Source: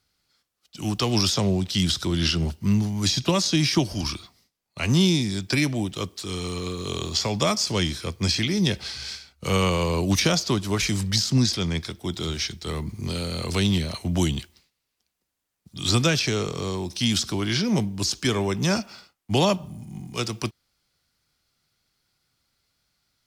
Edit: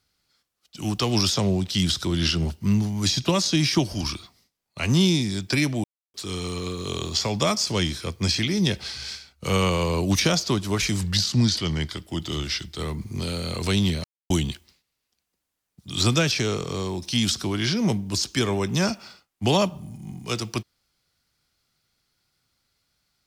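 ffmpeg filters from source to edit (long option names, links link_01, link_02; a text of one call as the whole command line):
ffmpeg -i in.wav -filter_complex "[0:a]asplit=7[link_01][link_02][link_03][link_04][link_05][link_06][link_07];[link_01]atrim=end=5.84,asetpts=PTS-STARTPTS,afade=type=out:start_time=5.836:duration=0.004:curve=hsin[link_08];[link_02]atrim=start=5.84:end=6.14,asetpts=PTS-STARTPTS,volume=0[link_09];[link_03]atrim=start=6.14:end=11.024,asetpts=PTS-STARTPTS,afade=type=in:duration=0.004:curve=hsin[link_10];[link_04]atrim=start=11.02:end=12.63,asetpts=PTS-STARTPTS,asetrate=41013,aresample=44100,atrim=end_sample=76345,asetpts=PTS-STARTPTS[link_11];[link_05]atrim=start=12.626:end=13.92,asetpts=PTS-STARTPTS,afade=type=out:start_time=1.29:duration=0.004:curve=hsin[link_12];[link_06]atrim=start=13.92:end=14.18,asetpts=PTS-STARTPTS,volume=0[link_13];[link_07]atrim=start=14.18,asetpts=PTS-STARTPTS,afade=type=in:duration=0.004:curve=hsin[link_14];[link_08][link_09][link_10]concat=n=3:v=0:a=1[link_15];[link_15][link_11]acrossfade=duration=0.004:curve1=hsin:curve2=hsin[link_16];[link_12][link_13][link_14]concat=n=3:v=0:a=1[link_17];[link_16][link_17]acrossfade=duration=0.004:curve1=hsin:curve2=hsin" out.wav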